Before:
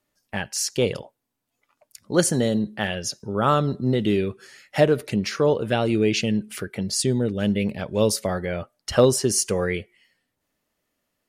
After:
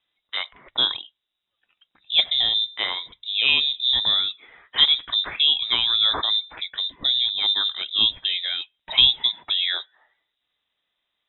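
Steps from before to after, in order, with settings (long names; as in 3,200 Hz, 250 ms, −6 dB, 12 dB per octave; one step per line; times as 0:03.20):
voice inversion scrambler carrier 3,800 Hz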